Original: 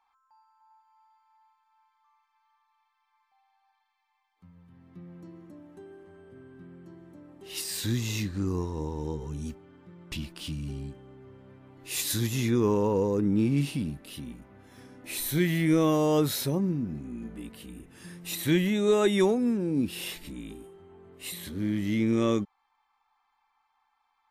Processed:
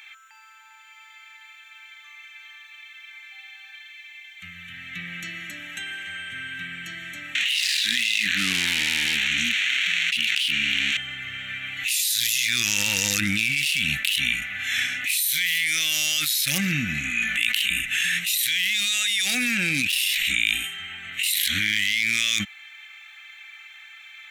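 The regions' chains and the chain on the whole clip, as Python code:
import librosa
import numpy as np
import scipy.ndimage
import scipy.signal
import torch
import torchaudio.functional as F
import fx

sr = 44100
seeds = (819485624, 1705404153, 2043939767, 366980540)

y = fx.chain(x, sr, fx.crossing_spikes(level_db=-26.5),
    fx.lowpass(hz=3000.0, slope=12),
    fx.low_shelf_res(hz=160.0, db=-9.0, q=3.0), at=(7.35, 10.97))
y = fx.chain(y, sr, fx.low_shelf(hz=280.0, db=-10.0),
    fx.env_flatten(amount_pct=50), at=(17.1, 17.7))
y = fx.wiener(y, sr, points=9)
y = scipy.signal.sosfilt(scipy.signal.cheby2(4, 40, 1100.0, 'highpass', fs=sr, output='sos'), y)
y = fx.env_flatten(y, sr, amount_pct=100)
y = y * 10.0 ** (5.5 / 20.0)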